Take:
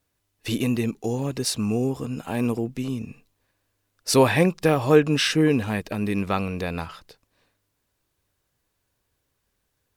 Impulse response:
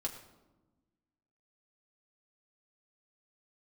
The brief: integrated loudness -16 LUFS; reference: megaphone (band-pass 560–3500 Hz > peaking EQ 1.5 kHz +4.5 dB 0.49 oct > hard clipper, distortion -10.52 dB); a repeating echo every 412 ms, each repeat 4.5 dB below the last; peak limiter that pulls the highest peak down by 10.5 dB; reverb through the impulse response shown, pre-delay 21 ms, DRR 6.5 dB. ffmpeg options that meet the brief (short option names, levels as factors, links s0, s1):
-filter_complex "[0:a]alimiter=limit=0.178:level=0:latency=1,aecho=1:1:412|824|1236|1648|2060|2472|2884|3296|3708:0.596|0.357|0.214|0.129|0.0772|0.0463|0.0278|0.0167|0.01,asplit=2[s0][s1];[1:a]atrim=start_sample=2205,adelay=21[s2];[s1][s2]afir=irnorm=-1:irlink=0,volume=0.447[s3];[s0][s3]amix=inputs=2:normalize=0,highpass=560,lowpass=3500,equalizer=f=1500:t=o:w=0.49:g=4.5,asoftclip=type=hard:threshold=0.0501,volume=6.31"